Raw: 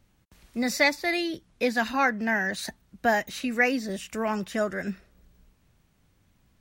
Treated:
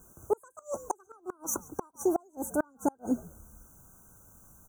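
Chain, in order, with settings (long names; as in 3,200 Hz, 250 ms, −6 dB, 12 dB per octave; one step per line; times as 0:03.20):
gliding playback speed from 188% → 94%
pitch vibrato 5.8 Hz 29 cents
in parallel at −12 dB: bit-depth reduction 8 bits, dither triangular
on the sum: brick-wall band-stop 1,600–5,800 Hz
on a send: echo with shifted repeats 138 ms, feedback 36%, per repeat −82 Hz, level −22.5 dB
on the sum: gate with flip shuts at −18 dBFS, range −35 dB
level +2.5 dB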